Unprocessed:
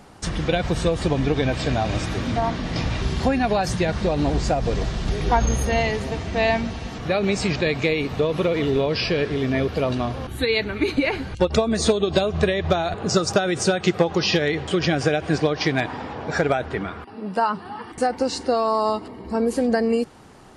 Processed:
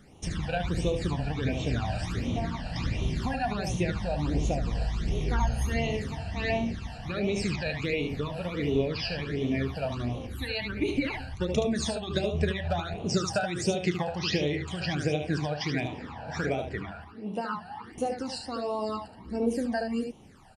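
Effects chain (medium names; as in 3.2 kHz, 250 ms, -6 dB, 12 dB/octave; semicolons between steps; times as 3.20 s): early reflections 34 ms -12 dB, 74 ms -6 dB; phase shifter stages 12, 1.4 Hz, lowest notch 350–1600 Hz; trim -6.5 dB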